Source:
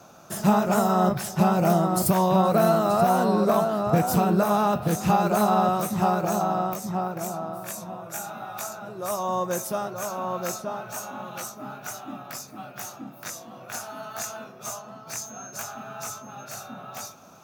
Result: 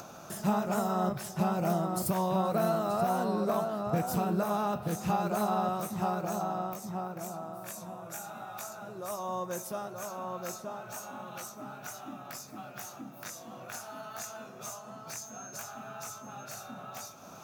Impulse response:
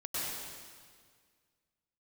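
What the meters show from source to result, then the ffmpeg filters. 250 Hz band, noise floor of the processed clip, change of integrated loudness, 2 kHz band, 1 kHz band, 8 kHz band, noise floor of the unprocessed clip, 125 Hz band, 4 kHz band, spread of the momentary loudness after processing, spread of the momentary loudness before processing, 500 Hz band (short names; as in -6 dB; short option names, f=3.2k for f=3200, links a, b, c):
-8.5 dB, -48 dBFS, -9.5 dB, -8.0 dB, -8.5 dB, -8.0 dB, -46 dBFS, -8.5 dB, -8.0 dB, 13 LU, 16 LU, -8.5 dB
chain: -filter_complex "[0:a]acompressor=mode=upward:threshold=-28dB:ratio=2.5,asplit=2[a][b];[1:a]atrim=start_sample=2205,asetrate=48510,aresample=44100[c];[b][c]afir=irnorm=-1:irlink=0,volume=-23.5dB[d];[a][d]amix=inputs=2:normalize=0,volume=-9dB"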